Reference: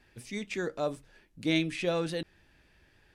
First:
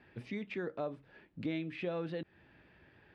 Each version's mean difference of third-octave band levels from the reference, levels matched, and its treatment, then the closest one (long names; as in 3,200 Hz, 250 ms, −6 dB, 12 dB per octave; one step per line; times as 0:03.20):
6.0 dB: high-pass filter 100 Hz 12 dB per octave
downward compressor 3 to 1, threshold −42 dBFS, peak gain reduction 14 dB
high-frequency loss of the air 380 metres
level +5 dB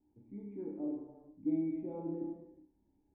12.5 dB: formant resonators in series u
flutter between parallel walls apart 5.1 metres, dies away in 0.33 s
reverb whose tail is shaped and stops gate 460 ms falling, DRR −0.5 dB
level −2.5 dB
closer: first